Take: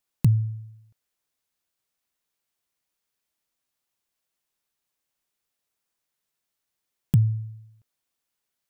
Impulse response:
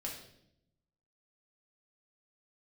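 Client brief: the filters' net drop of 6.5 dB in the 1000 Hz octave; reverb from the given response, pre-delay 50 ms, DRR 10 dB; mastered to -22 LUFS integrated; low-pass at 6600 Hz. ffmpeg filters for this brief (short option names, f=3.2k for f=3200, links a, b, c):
-filter_complex "[0:a]lowpass=6.6k,equalizer=f=1k:t=o:g=-8,asplit=2[a][b];[1:a]atrim=start_sample=2205,adelay=50[c];[b][c]afir=irnorm=-1:irlink=0,volume=-10dB[d];[a][d]amix=inputs=2:normalize=0,volume=3dB"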